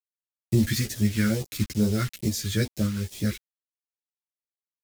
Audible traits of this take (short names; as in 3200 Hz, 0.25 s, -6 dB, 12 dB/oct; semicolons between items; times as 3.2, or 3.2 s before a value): a quantiser's noise floor 6-bit, dither none; phasing stages 2, 2.3 Hz, lowest notch 660–1500 Hz; random-step tremolo; a shimmering, thickened sound